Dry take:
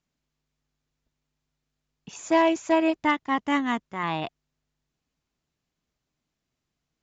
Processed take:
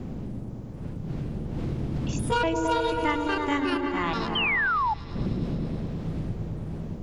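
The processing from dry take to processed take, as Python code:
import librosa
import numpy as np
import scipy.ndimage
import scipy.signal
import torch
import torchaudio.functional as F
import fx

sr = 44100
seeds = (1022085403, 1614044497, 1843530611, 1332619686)

p1 = fx.pitch_trill(x, sr, semitones=6.5, every_ms=243)
p2 = fx.dmg_wind(p1, sr, seeds[0], corner_hz=150.0, level_db=-37.0)
p3 = p2 + fx.echo_opening(p2, sr, ms=108, hz=400, octaves=1, feedback_pct=70, wet_db=0, dry=0)
p4 = fx.spec_paint(p3, sr, seeds[1], shape='fall', start_s=4.35, length_s=0.59, low_hz=820.0, high_hz=3200.0, level_db=-22.0)
p5 = fx.band_squash(p4, sr, depth_pct=70)
y = p5 * 10.0 ** (-2.5 / 20.0)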